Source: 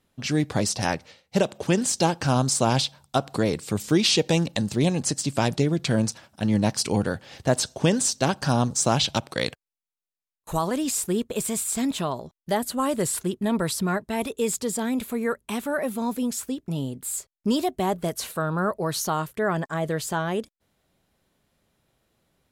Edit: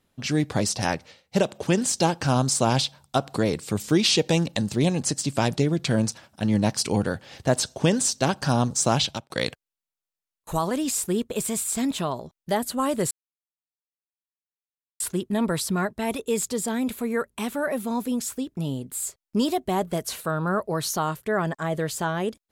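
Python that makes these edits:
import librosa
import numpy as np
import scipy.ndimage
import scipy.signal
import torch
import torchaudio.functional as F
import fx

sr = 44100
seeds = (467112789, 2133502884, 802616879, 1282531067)

y = fx.edit(x, sr, fx.fade_out_span(start_s=9.0, length_s=0.3),
    fx.insert_silence(at_s=13.11, length_s=1.89), tone=tone)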